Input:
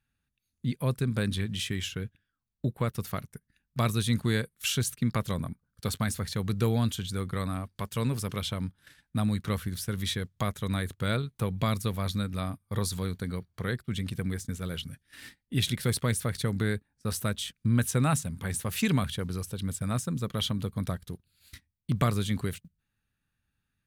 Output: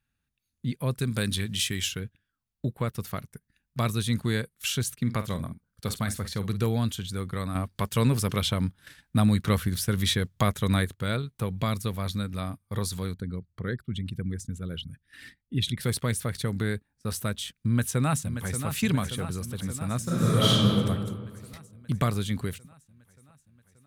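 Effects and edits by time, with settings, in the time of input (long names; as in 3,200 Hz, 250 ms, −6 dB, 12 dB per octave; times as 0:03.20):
0:00.99–0:02.00: high-shelf EQ 3,000 Hz +10 dB
0:05.00–0:06.66: double-tracking delay 49 ms −12 dB
0:07.55–0:10.85: clip gain +6 dB
0:13.14–0:15.81: spectral envelope exaggerated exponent 1.5
0:17.66–0:18.67: delay throw 580 ms, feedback 70%, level −9 dB
0:20.03–0:20.67: thrown reverb, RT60 1.7 s, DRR −9.5 dB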